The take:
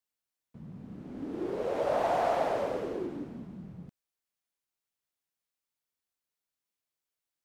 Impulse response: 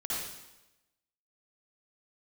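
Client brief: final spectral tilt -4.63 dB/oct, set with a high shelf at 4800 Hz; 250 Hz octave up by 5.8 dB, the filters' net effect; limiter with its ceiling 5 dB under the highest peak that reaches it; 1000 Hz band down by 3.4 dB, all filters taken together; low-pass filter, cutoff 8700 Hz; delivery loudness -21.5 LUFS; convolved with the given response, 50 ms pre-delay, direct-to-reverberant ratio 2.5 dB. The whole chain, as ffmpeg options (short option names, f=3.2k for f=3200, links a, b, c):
-filter_complex "[0:a]lowpass=8.7k,equalizer=f=250:t=o:g=8,equalizer=f=1k:t=o:g=-6.5,highshelf=f=4.8k:g=4,alimiter=limit=-23dB:level=0:latency=1,asplit=2[a][b];[1:a]atrim=start_sample=2205,adelay=50[c];[b][c]afir=irnorm=-1:irlink=0,volume=-7dB[d];[a][d]amix=inputs=2:normalize=0,volume=10.5dB"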